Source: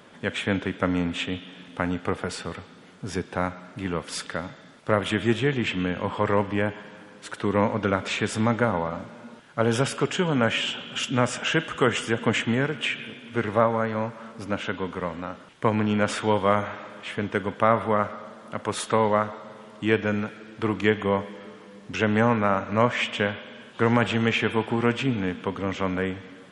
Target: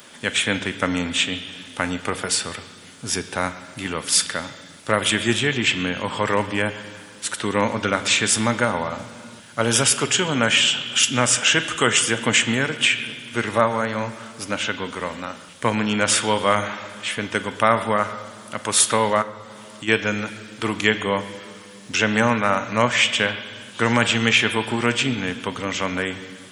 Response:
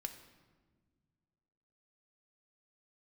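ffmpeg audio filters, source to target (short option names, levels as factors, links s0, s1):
-filter_complex "[0:a]crystalizer=i=7:c=0,asplit=3[s0][s1][s2];[s0]afade=t=out:st=19.21:d=0.02[s3];[s1]acompressor=threshold=0.02:ratio=3,afade=t=in:st=19.21:d=0.02,afade=t=out:st=19.87:d=0.02[s4];[s2]afade=t=in:st=19.87:d=0.02[s5];[s3][s4][s5]amix=inputs=3:normalize=0,asplit=2[s6][s7];[1:a]atrim=start_sample=2205[s8];[s7][s8]afir=irnorm=-1:irlink=0,volume=1.19[s9];[s6][s9]amix=inputs=2:normalize=0,volume=0.531"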